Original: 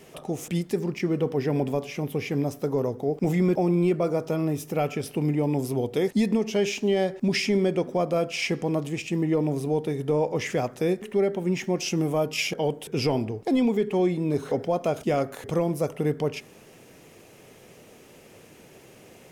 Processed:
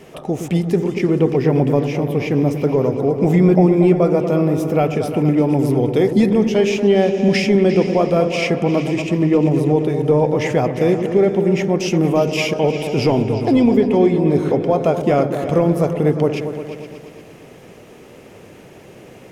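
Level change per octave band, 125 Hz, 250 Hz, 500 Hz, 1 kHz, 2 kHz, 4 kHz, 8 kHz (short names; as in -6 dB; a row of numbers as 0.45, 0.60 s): +10.0, +10.0, +9.5, +9.0, +7.0, +4.5, +2.0 dB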